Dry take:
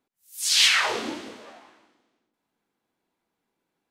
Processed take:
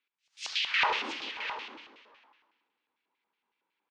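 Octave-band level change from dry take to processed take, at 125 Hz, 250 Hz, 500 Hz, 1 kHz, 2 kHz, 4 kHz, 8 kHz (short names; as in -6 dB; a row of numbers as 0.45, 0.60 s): under -10 dB, -11.0 dB, -8.0 dB, -1.0 dB, -5.5 dB, -10.5 dB, -22.0 dB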